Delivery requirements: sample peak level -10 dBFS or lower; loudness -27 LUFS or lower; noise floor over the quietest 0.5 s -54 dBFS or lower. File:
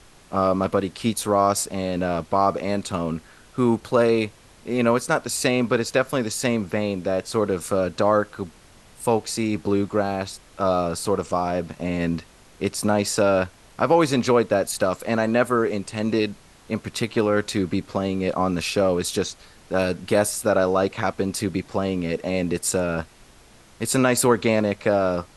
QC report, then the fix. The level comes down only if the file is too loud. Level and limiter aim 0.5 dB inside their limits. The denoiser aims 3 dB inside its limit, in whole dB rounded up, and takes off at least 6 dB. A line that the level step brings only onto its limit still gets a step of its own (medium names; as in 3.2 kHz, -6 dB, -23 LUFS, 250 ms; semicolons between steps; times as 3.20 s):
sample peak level -5.0 dBFS: fail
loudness -23.0 LUFS: fail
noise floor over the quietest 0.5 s -51 dBFS: fail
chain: trim -4.5 dB; peak limiter -10.5 dBFS